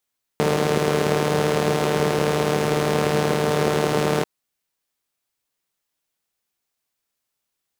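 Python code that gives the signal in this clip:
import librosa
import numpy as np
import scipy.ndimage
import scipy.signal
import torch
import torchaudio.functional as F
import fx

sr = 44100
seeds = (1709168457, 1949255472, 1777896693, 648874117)

y = fx.engine_four(sr, seeds[0], length_s=3.84, rpm=4500, resonances_hz=(200.0, 400.0))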